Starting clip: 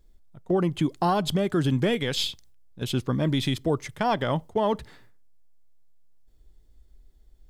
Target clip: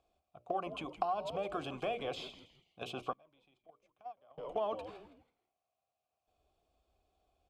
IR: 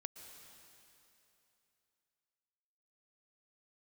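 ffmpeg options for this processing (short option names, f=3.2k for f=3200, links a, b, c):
-filter_complex "[0:a]acrossover=split=450|1200[a][b][c];[a]acompressor=threshold=-33dB:ratio=4[d];[b]acompressor=threshold=-35dB:ratio=4[e];[c]acompressor=threshold=-41dB:ratio=4[f];[d][e][f]amix=inputs=3:normalize=0,asplit=3[g][h][i];[g]bandpass=f=730:t=q:w=8,volume=0dB[j];[h]bandpass=f=1.09k:t=q:w=8,volume=-6dB[k];[i]bandpass=f=2.44k:t=q:w=8,volume=-9dB[l];[j][k][l]amix=inputs=3:normalize=0,equalizer=f=76:w=1.5:g=12.5,bandreject=f=60:t=h:w=6,bandreject=f=120:t=h:w=6,bandreject=f=180:t=h:w=6,bandreject=f=240:t=h:w=6,bandreject=f=300:t=h:w=6,bandreject=f=360:t=h:w=6,bandreject=f=420:t=h:w=6,bandreject=f=480:t=h:w=6,bandreject=f=540:t=h:w=6,bandreject=f=600:t=h:w=6,asplit=4[m][n][o][p];[n]adelay=163,afreqshift=-120,volume=-14dB[q];[o]adelay=326,afreqshift=-240,volume=-22.9dB[r];[p]adelay=489,afreqshift=-360,volume=-31.7dB[s];[m][q][r][s]amix=inputs=4:normalize=0,acompressor=threshold=-41dB:ratio=5,asettb=1/sr,asplit=3[t][u][v];[t]atrim=end=3.134[w];[u]atrim=start=3.13:end=4.38,asetpts=PTS-STARTPTS,afade=t=in:d=0.004:c=qsin,afade=t=out:st=1.246:d=0.004:c=qsin,agate=range=-29dB:threshold=-39dB:ratio=16:detection=peak[x];[v]atrim=start=4.376[y];[w][x]acrossfade=d=0.004:c1=hsin:c2=qsin[z];[z][y]acrossfade=d=0.004:c1=qsin:c2=hsin,highshelf=f=5.3k:g=9.5,volume=10dB"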